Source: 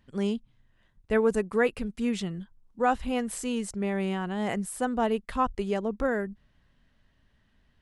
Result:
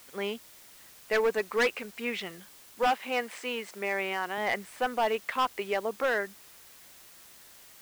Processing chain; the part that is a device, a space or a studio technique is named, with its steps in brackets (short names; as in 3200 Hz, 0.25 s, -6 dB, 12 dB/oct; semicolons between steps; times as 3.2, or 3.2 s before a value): drive-through speaker (BPF 550–3400 Hz; bell 2200 Hz +7 dB 0.51 oct; hard clip -24.5 dBFS, distortion -9 dB; white noise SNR 21 dB); 2.87–4.38 HPF 190 Hz 12 dB/oct; gain +4 dB